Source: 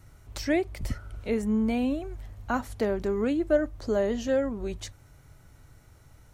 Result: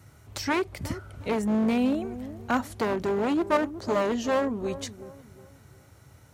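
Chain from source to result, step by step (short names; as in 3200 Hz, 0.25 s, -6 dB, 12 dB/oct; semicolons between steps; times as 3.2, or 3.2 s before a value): one-sided fold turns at -24.5 dBFS; HPF 76 Hz 24 dB/oct; dark delay 0.364 s, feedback 34%, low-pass 1000 Hz, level -13.5 dB; gain +3 dB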